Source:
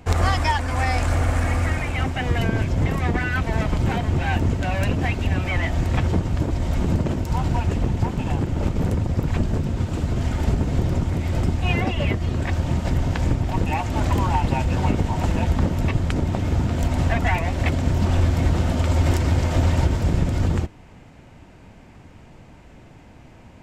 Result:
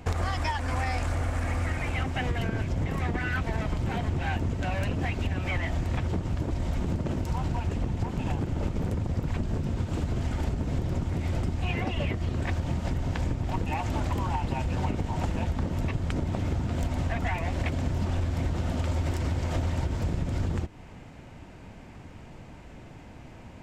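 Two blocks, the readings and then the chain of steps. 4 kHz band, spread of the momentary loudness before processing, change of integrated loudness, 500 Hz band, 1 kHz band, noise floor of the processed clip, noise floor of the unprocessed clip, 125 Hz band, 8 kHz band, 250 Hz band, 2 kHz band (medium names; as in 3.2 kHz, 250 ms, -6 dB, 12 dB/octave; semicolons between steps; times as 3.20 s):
-7.5 dB, 4 LU, -7.5 dB, -7.0 dB, -7.5 dB, -46 dBFS, -46 dBFS, -7.5 dB, -8.0 dB, -7.5 dB, -7.0 dB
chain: compression, threshold -25 dBFS, peak gain reduction 11.5 dB; loudspeaker Doppler distortion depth 0.16 ms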